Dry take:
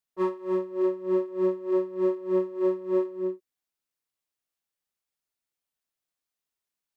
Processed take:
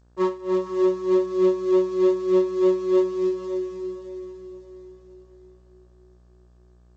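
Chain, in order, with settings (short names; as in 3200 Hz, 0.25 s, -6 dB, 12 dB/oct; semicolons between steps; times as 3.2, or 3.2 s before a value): switching dead time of 0.082 ms; buzz 60 Hz, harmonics 30, -61 dBFS -7 dB/oct; diffused feedback echo 0.531 s, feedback 41%, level -7.5 dB; gain +4 dB; G.722 64 kbps 16000 Hz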